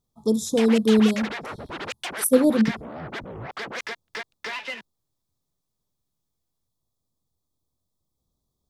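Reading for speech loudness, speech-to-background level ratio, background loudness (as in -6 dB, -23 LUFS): -21.0 LUFS, 12.5 dB, -33.5 LUFS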